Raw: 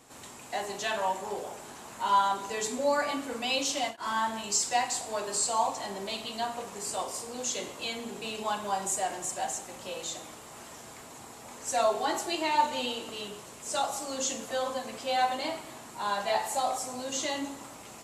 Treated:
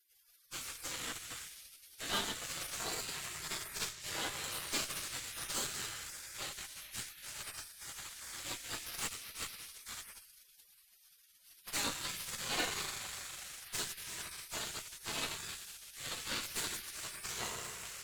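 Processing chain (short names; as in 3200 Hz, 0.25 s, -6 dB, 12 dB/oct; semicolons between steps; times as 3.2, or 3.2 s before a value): FDN reverb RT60 3.8 s, high-frequency decay 0.35×, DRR 9 dB; spectral gate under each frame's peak -25 dB weak; added harmonics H 8 -16 dB, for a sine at -25 dBFS; gain +3.5 dB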